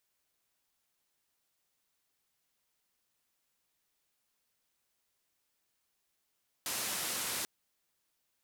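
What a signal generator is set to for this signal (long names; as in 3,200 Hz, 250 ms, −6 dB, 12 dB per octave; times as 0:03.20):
band-limited noise 110–13,000 Hz, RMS −36.5 dBFS 0.79 s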